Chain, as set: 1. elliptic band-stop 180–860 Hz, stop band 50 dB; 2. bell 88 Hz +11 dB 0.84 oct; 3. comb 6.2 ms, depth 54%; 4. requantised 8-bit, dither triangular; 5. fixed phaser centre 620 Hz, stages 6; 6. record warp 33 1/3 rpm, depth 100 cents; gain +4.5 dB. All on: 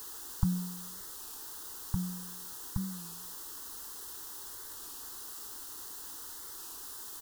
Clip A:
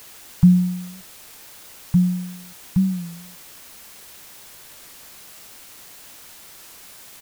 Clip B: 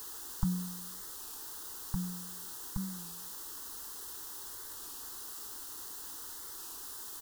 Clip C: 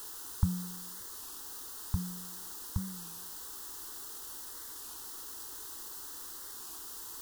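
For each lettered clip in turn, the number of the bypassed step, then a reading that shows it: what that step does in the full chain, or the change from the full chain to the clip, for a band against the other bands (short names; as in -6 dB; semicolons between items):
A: 5, 250 Hz band +14.0 dB; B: 2, 125 Hz band -3.0 dB; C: 3, 250 Hz band -3.0 dB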